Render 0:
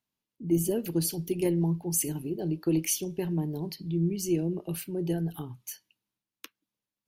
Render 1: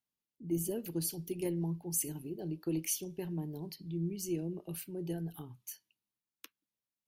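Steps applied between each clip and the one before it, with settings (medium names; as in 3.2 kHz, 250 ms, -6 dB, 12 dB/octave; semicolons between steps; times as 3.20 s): treble shelf 6.9 kHz +4.5 dB; trim -8.5 dB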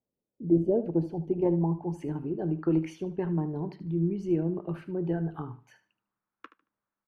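low-pass sweep 520 Hz -> 1.3 kHz, 0.25–2.28 s; feedback delay 75 ms, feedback 23%, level -14 dB; trim +8.5 dB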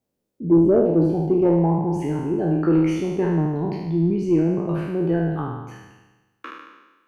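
spectral sustain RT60 1.18 s; saturation -13 dBFS, distortion -24 dB; trim +7 dB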